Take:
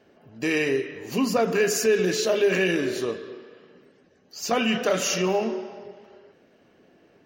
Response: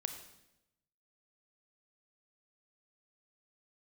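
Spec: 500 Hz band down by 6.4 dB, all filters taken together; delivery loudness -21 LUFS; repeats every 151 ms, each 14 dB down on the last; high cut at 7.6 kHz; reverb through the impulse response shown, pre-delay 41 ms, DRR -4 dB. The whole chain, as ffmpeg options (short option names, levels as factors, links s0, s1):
-filter_complex "[0:a]lowpass=7600,equalizer=f=500:t=o:g=-8.5,aecho=1:1:151|302:0.2|0.0399,asplit=2[s0][s1];[1:a]atrim=start_sample=2205,adelay=41[s2];[s1][s2]afir=irnorm=-1:irlink=0,volume=1.58[s3];[s0][s3]amix=inputs=2:normalize=0,volume=1.12"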